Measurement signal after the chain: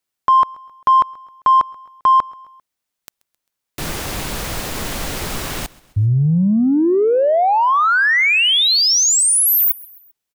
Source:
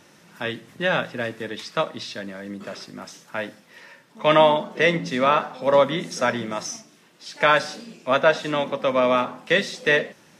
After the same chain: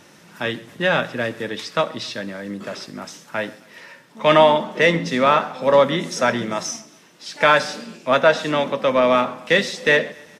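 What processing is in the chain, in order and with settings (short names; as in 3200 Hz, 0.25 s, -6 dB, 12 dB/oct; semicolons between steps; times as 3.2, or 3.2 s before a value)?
in parallel at -9 dB: soft clip -19 dBFS; on the sum: feedback echo 0.132 s, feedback 52%, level -23 dB; gain +1.5 dB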